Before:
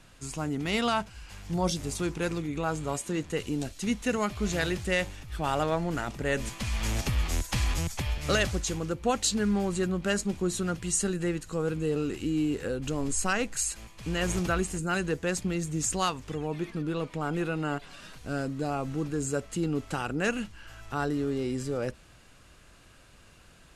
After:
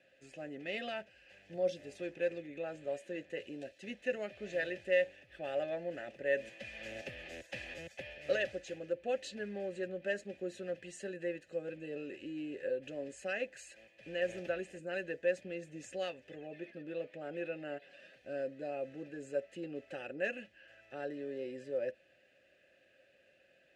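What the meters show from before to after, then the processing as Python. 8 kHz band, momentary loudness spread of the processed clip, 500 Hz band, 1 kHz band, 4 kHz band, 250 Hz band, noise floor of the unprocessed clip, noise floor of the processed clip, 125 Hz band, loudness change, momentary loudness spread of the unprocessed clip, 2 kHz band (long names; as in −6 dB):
−24.5 dB, 12 LU, −4.5 dB, −16.5 dB, −14.0 dB, −15.5 dB, −55 dBFS, −68 dBFS, −22.5 dB, −9.5 dB, 6 LU, −7.5 dB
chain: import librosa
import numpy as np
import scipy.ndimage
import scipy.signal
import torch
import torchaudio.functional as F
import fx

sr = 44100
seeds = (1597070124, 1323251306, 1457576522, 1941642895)

y = fx.vowel_filter(x, sr, vowel='e')
y = fx.notch_comb(y, sr, f0_hz=470.0)
y = y * 10.0 ** (4.5 / 20.0)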